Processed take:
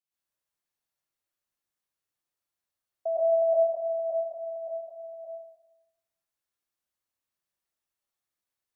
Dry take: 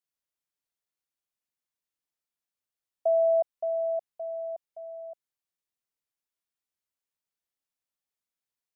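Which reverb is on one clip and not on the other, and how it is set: plate-style reverb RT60 0.99 s, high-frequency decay 0.6×, pre-delay 95 ms, DRR -8 dB; gain -5.5 dB

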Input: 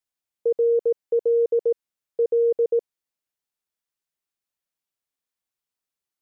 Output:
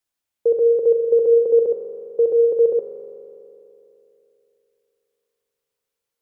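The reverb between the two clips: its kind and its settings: spring tank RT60 3.1 s, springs 41 ms, chirp 35 ms, DRR 3.5 dB; gain +4.5 dB

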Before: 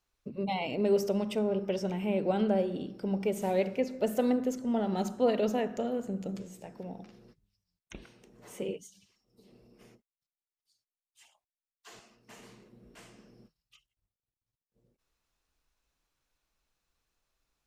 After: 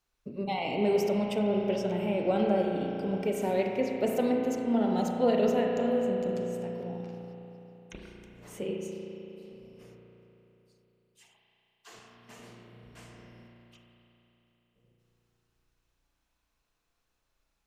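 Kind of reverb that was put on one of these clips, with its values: spring tank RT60 3.5 s, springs 34 ms, chirp 65 ms, DRR 0.5 dB

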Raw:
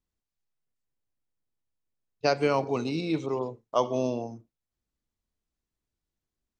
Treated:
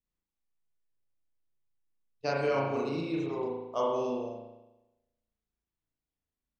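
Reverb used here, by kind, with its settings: spring tank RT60 1 s, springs 36 ms, chirp 75 ms, DRR -4 dB; gain -9 dB

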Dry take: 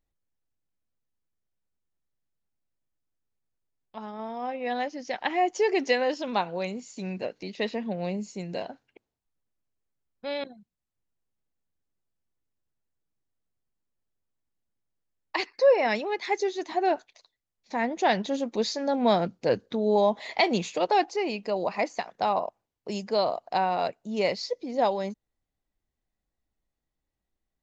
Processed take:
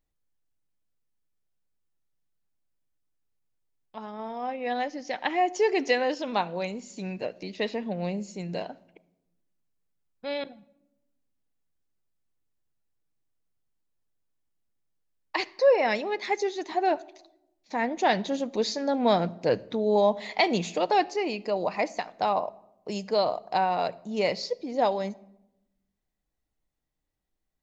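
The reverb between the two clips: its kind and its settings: shoebox room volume 2900 m³, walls furnished, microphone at 0.46 m

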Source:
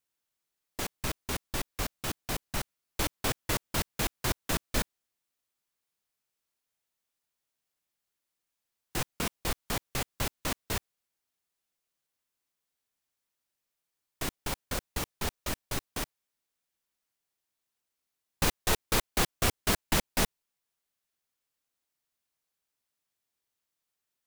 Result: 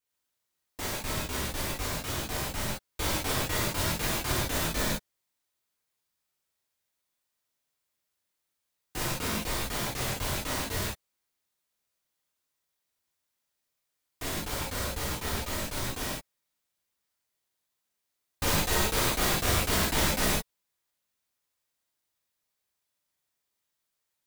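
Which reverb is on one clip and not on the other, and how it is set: non-linear reverb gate 0.18 s flat, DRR -8 dB; gain -5.5 dB

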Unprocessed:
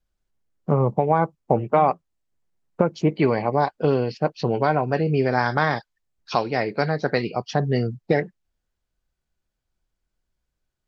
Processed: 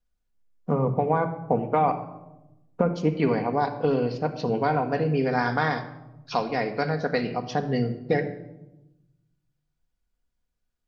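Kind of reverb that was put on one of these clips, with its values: shoebox room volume 3500 m³, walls furnished, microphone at 1.8 m; gain -4.5 dB

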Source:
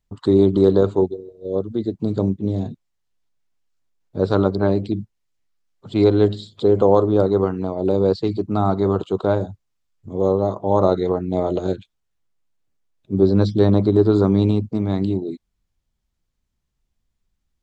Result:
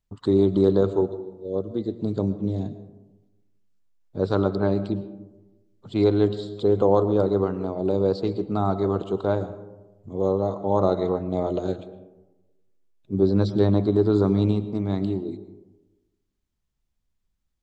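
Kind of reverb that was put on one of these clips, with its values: digital reverb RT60 1.1 s, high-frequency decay 0.35×, pre-delay 75 ms, DRR 13.5 dB; gain -4.5 dB

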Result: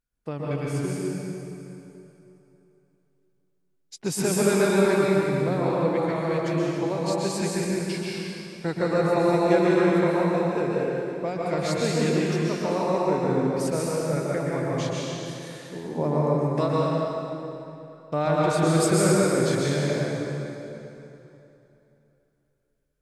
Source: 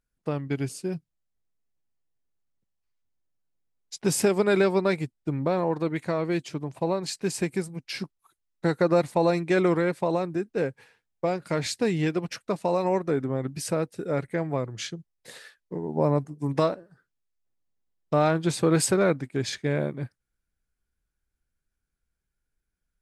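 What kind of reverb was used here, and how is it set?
plate-style reverb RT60 3.1 s, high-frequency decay 0.8×, pre-delay 0.11 s, DRR -5.5 dB; gain -4 dB

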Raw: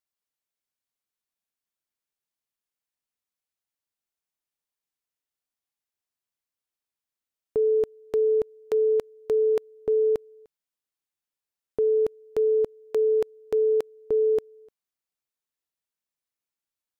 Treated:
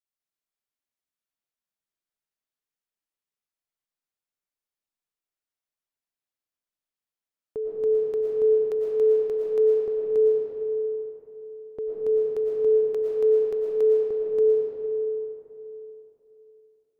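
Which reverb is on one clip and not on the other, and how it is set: digital reverb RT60 3.4 s, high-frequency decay 0.5×, pre-delay 75 ms, DRR -3.5 dB; gain -7.5 dB

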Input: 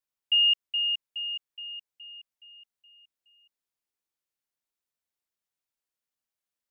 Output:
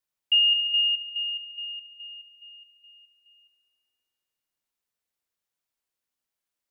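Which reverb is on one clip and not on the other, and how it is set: spring tank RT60 1.9 s, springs 55 ms, chirp 35 ms, DRR 8.5 dB; gain +2.5 dB

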